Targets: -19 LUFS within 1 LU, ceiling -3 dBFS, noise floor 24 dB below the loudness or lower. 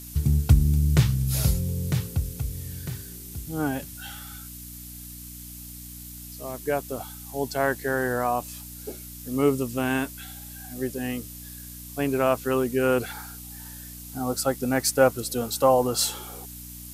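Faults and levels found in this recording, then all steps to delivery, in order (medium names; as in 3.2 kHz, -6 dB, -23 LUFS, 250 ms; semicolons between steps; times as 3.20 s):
hum 60 Hz; highest harmonic 300 Hz; hum level -41 dBFS; noise floor -41 dBFS; noise floor target -50 dBFS; loudness -25.5 LUFS; peak level -5.5 dBFS; loudness target -19.0 LUFS
-> de-hum 60 Hz, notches 5; noise print and reduce 9 dB; trim +6.5 dB; peak limiter -3 dBFS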